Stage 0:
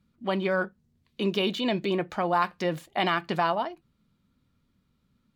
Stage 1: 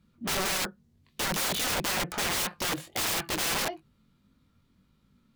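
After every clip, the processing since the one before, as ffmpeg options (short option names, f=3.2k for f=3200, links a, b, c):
-af "flanger=delay=18.5:depth=4:speed=1.6,aeval=exprs='(mod(35.5*val(0)+1,2)-1)/35.5':c=same,volume=7dB"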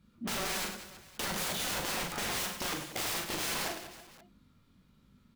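-filter_complex "[0:a]acompressor=threshold=-37dB:ratio=3,asplit=2[a][b];[b]aecho=0:1:40|100|190|325|527.5:0.631|0.398|0.251|0.158|0.1[c];[a][c]amix=inputs=2:normalize=0"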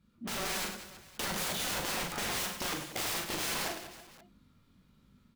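-af "dynaudnorm=f=230:g=3:m=4dB,volume=-4dB"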